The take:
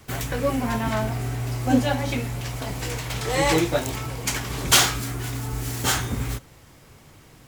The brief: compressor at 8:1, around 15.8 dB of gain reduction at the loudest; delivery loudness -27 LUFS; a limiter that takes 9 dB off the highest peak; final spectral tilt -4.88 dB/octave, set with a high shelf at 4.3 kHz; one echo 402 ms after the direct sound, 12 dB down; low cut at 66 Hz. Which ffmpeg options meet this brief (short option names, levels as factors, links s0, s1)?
-af "highpass=66,highshelf=f=4300:g=-3.5,acompressor=threshold=0.0316:ratio=8,alimiter=level_in=1.26:limit=0.0631:level=0:latency=1,volume=0.794,aecho=1:1:402:0.251,volume=2.66"